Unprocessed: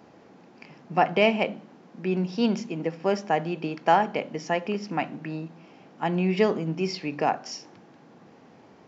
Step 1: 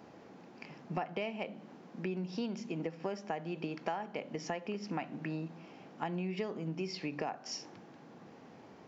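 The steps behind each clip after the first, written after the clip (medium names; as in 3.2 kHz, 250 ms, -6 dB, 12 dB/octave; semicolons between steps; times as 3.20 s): compression 8:1, threshold -32 dBFS, peak gain reduction 17.5 dB; trim -2 dB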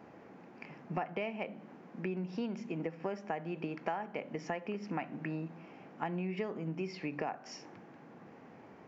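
resonant high shelf 2.9 kHz -6.5 dB, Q 1.5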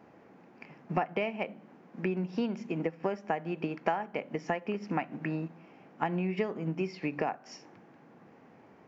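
upward expansion 1.5:1, over -51 dBFS; trim +7.5 dB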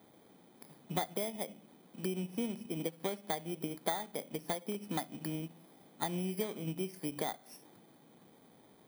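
bit-reversed sample order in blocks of 16 samples; trim -5 dB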